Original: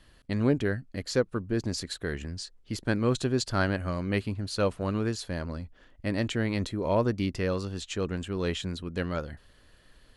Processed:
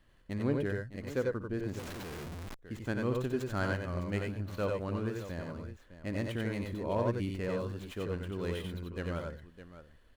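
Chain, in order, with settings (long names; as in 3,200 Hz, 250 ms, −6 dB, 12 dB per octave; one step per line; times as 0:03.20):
running median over 9 samples
multi-tap delay 59/91/93/609 ms −13.5/−3.5/−10.5/−13 dB
0:01.79–0:02.59: comparator with hysteresis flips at −46.5 dBFS
level −7.5 dB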